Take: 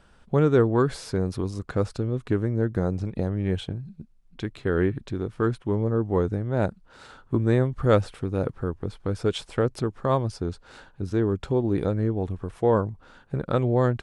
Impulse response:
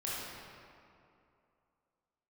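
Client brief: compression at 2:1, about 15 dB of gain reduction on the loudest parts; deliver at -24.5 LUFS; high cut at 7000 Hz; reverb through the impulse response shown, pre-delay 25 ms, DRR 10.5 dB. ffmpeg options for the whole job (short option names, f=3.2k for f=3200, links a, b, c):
-filter_complex "[0:a]lowpass=7k,acompressor=threshold=-43dB:ratio=2,asplit=2[a][b];[1:a]atrim=start_sample=2205,adelay=25[c];[b][c]afir=irnorm=-1:irlink=0,volume=-14.5dB[d];[a][d]amix=inputs=2:normalize=0,volume=14dB"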